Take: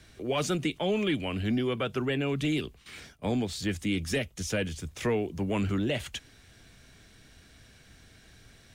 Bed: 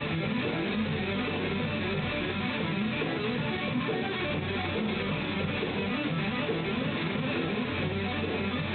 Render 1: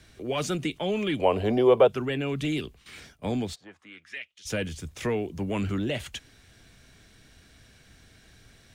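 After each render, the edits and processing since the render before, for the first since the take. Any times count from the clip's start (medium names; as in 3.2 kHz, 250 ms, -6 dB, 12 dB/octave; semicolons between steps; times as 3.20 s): 1.19–1.88 s: high-order bell 640 Hz +16 dB; 3.54–4.45 s: band-pass filter 680 Hz -> 3.6 kHz, Q 3.1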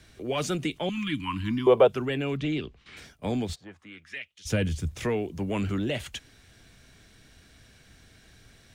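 0.89–1.67 s: Chebyshev band-stop 310–1000 Hz, order 4; 2.37–2.97 s: distance through air 130 m; 3.49–5.04 s: peaking EQ 79 Hz +9.5 dB 2.9 oct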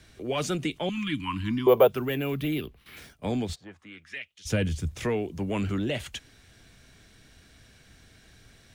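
1.68–3.14 s: careless resampling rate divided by 3×, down none, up hold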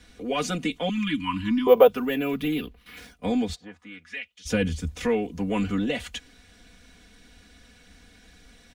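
treble shelf 10 kHz -6 dB; comb 4.1 ms, depth 95%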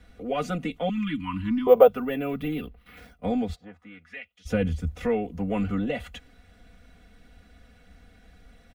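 peaking EQ 6.4 kHz -13 dB 2.4 oct; comb 1.5 ms, depth 36%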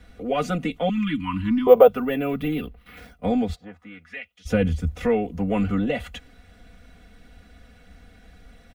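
trim +4 dB; peak limiter -2 dBFS, peak gain reduction 2.5 dB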